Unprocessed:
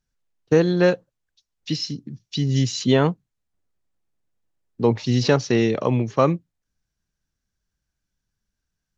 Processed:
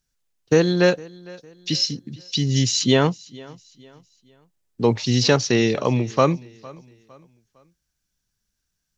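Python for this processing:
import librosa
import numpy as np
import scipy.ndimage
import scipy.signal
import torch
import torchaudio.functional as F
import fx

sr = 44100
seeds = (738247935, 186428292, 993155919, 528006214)

y = fx.high_shelf(x, sr, hz=2900.0, db=9.5)
y = fx.echo_feedback(y, sr, ms=457, feedback_pct=38, wet_db=-22.5)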